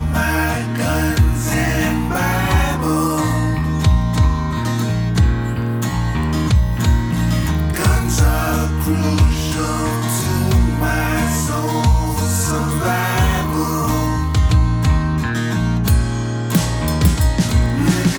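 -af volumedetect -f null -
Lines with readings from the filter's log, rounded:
mean_volume: -16.1 dB
max_volume: -3.2 dB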